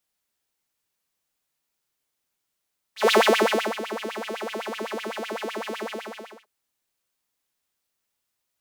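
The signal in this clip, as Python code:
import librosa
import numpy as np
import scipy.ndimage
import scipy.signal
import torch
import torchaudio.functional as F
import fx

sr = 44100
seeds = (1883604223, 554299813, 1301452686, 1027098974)

y = fx.sub_patch_wobble(sr, seeds[0], note=57, wave='saw', wave2='saw', interval_st=0, level2_db=-18, sub_db=-30.0, noise_db=-27, kind='highpass', cutoff_hz=930.0, q=6.7, env_oct=0.5, env_decay_s=0.41, env_sustain_pct=5, attack_ms=153.0, decay_s=0.66, sustain_db=-16, release_s=0.66, note_s=2.84, lfo_hz=7.9, wobble_oct=1.7)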